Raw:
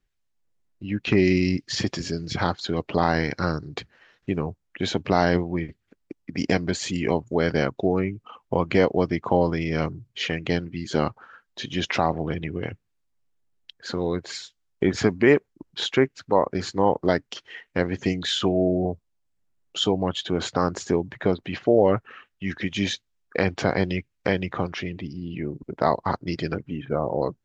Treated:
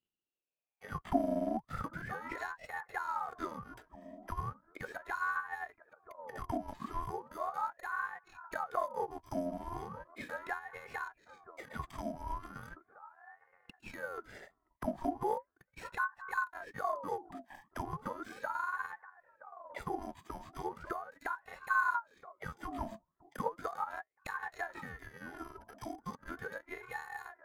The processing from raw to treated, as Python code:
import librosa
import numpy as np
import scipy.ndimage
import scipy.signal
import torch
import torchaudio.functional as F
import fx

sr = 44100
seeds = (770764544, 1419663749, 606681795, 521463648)

p1 = fx.bit_reversed(x, sr, seeds[0], block=128)
p2 = fx.auto_wah(p1, sr, base_hz=220.0, top_hz=1600.0, q=10.0, full_db=-17.0, direction='down')
p3 = p2 + fx.echo_wet_lowpass(p2, sr, ms=971, feedback_pct=30, hz=480.0, wet_db=-14.0, dry=0)
p4 = fx.ring_lfo(p3, sr, carrier_hz=880.0, swing_pct=50, hz=0.37)
y = p4 * 10.0 ** (12.0 / 20.0)